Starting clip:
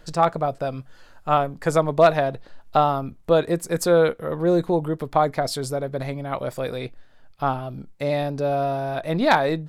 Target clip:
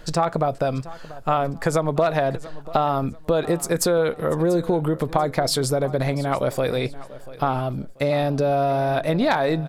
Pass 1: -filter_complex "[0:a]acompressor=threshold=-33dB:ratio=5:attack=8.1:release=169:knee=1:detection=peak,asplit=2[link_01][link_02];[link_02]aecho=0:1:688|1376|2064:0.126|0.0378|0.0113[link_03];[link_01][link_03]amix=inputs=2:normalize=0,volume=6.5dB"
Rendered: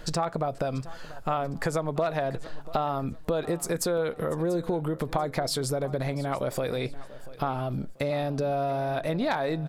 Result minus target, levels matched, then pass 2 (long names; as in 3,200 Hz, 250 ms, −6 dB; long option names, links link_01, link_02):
downward compressor: peak gain reduction +7 dB
-filter_complex "[0:a]acompressor=threshold=-24dB:ratio=5:attack=8.1:release=169:knee=1:detection=peak,asplit=2[link_01][link_02];[link_02]aecho=0:1:688|1376|2064:0.126|0.0378|0.0113[link_03];[link_01][link_03]amix=inputs=2:normalize=0,volume=6.5dB"